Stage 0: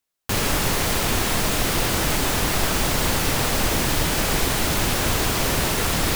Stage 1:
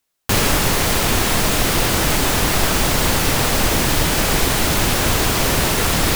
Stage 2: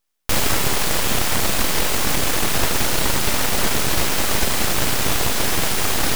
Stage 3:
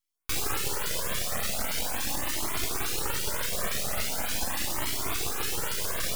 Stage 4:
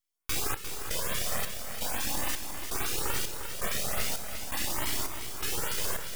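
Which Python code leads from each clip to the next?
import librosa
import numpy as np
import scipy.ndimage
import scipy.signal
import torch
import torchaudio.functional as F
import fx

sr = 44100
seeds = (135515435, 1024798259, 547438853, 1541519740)

y1 = fx.rider(x, sr, range_db=3, speed_s=0.5)
y1 = y1 * librosa.db_to_amplitude(4.5)
y2 = np.abs(y1)
y3 = fx.low_shelf(y2, sr, hz=230.0, db=-8.0)
y3 = fx.filter_lfo_notch(y3, sr, shape='saw_up', hz=3.5, low_hz=570.0, high_hz=7200.0, q=0.79)
y3 = fx.comb_cascade(y3, sr, direction='rising', hz=0.41)
y3 = y3 * librosa.db_to_amplitude(-4.0)
y4 = fx.step_gate(y3, sr, bpm=166, pattern='xxxxxx....', floor_db=-12.0, edge_ms=4.5)
y4 = fx.notch(y4, sr, hz=4100.0, q=26.0)
y4 = y4 + 10.0 ** (-8.5 / 20.0) * np.pad(y4, (int(352 * sr / 1000.0), 0))[:len(y4)]
y4 = y4 * librosa.db_to_amplitude(-1.0)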